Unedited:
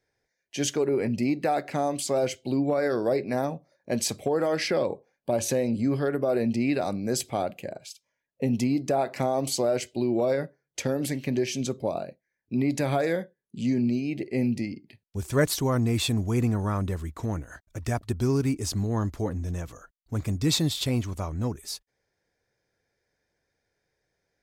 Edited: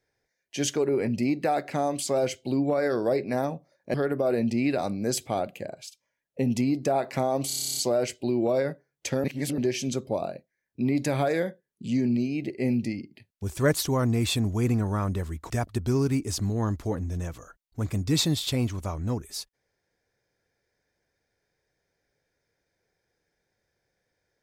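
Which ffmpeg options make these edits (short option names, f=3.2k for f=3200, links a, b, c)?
-filter_complex "[0:a]asplit=15[a][b][c][d][e][f][g][h][i][j][k][l][m][n][o];[a]atrim=end=3.942[p];[b]atrim=start=5.968:end=9.532[q];[c]atrim=start=9.498:end=9.532[r];[d]atrim=start=9.498:end=9.532[s];[e]atrim=start=9.498:end=9.532[t];[f]atrim=start=9.498:end=9.532[u];[g]atrim=start=9.498:end=9.532[v];[h]atrim=start=9.498:end=9.532[w];[i]atrim=start=9.498:end=9.532[x];[j]atrim=start=9.498:end=9.532[y];[k]atrim=start=9.498:end=9.532[z];[l]atrim=start=9.498:end=10.972[aa];[m]atrim=start=10.968:end=11.312,asetpts=PTS-STARTPTS,areverse[ab];[n]atrim=start=11.308:end=17.232[ac];[o]atrim=start=17.838[ad];[p][q]acrossfade=d=0.004:c1=hsin:c2=hsin[ae];[ae][r]acrossfade=d=0.004:c1=hsin:c2=hsin[af];[af][s]acrossfade=d=0.004:c1=hsin:c2=hsin[ag];[ag][t]acrossfade=d=0.004:c1=hsin:c2=hsin[ah];[ah][u]acrossfade=d=0.004:c1=hsin:c2=hsin[ai];[ai][v]acrossfade=d=0.004:c1=hsin:c2=hsin[aj];[aj][w]acrossfade=d=0.004:c1=hsin:c2=hsin[ak];[ak][x]acrossfade=d=0.004:c1=hsin:c2=hsin[al];[al][y]acrossfade=d=0.004:c1=hsin:c2=hsin[am];[am][z]acrossfade=d=0.004:c1=hsin:c2=hsin[an];[an][aa]acrossfade=d=0.004:c1=hsin:c2=hsin[ao];[ao][ab]acrossfade=d=0.004:c1=hsin:c2=hsin[ap];[ap][ac]acrossfade=d=0.004:c1=hsin:c2=hsin[aq];[aq][ad]acrossfade=d=0.004:c1=hsin:c2=hsin"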